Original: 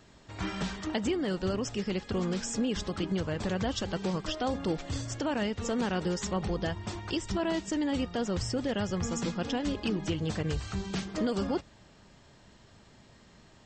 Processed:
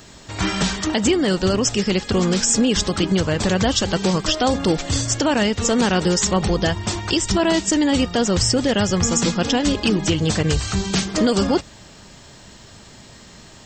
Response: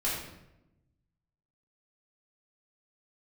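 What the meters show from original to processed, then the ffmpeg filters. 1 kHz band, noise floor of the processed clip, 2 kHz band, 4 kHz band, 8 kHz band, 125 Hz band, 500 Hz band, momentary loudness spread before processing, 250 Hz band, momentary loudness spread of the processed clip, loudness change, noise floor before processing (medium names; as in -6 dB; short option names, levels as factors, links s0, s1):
+12.5 dB, -44 dBFS, +13.5 dB, +16.0 dB, +19.5 dB, +12.0 dB, +12.0 dB, 4 LU, +12.0 dB, 4 LU, +13.0 dB, -57 dBFS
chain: -af "highshelf=f=4700:g=11.5,alimiter=level_in=8.41:limit=0.891:release=50:level=0:latency=1,volume=0.473"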